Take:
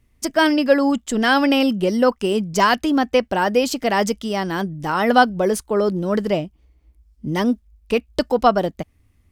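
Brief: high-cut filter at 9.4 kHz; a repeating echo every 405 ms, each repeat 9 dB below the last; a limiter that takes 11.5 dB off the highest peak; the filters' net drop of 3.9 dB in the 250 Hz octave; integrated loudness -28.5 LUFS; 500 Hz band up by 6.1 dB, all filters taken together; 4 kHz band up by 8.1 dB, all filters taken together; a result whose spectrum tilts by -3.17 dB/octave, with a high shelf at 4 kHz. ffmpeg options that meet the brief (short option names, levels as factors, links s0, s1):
-af "lowpass=9400,equalizer=f=250:t=o:g=-7.5,equalizer=f=500:t=o:g=8.5,highshelf=f=4000:g=7.5,equalizer=f=4000:t=o:g=7,alimiter=limit=0.422:level=0:latency=1,aecho=1:1:405|810|1215|1620:0.355|0.124|0.0435|0.0152,volume=0.316"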